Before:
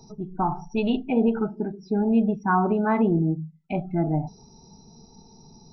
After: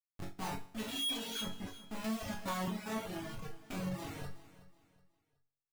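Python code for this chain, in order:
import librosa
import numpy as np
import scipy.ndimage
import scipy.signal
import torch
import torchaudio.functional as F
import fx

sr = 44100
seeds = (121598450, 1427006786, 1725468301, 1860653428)

y = fx.dmg_tone(x, sr, hz=3300.0, level_db=-26.0, at=(0.87, 1.41), fade=0.02)
y = fx.high_shelf(y, sr, hz=2700.0, db=10.5)
y = fx.notch_comb(y, sr, f0_hz=410.0)
y = fx.over_compress(y, sr, threshold_db=-31.0, ratio=-1.0, at=(3.42, 3.96), fade=0.02)
y = fx.low_shelf(y, sr, hz=97.0, db=-7.0)
y = fx.schmitt(y, sr, flips_db=-30.0)
y = fx.resonator_bank(y, sr, root=42, chord='minor', decay_s=0.76)
y = fx.dereverb_blind(y, sr, rt60_s=1.3)
y = fx.echo_feedback(y, sr, ms=371, feedback_pct=33, wet_db=-17.0)
y = fx.band_squash(y, sr, depth_pct=100, at=(2.04, 2.68))
y = F.gain(torch.from_numpy(y), 6.5).numpy()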